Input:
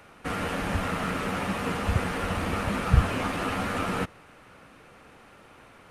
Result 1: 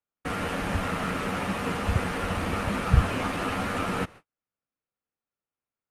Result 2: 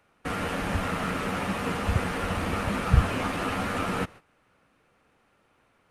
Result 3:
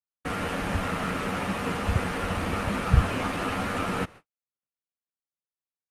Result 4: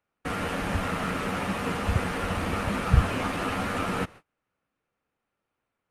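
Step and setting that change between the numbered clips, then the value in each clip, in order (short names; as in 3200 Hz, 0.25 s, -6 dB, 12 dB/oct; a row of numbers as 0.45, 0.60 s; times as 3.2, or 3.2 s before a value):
gate, range: -45, -14, -58, -31 dB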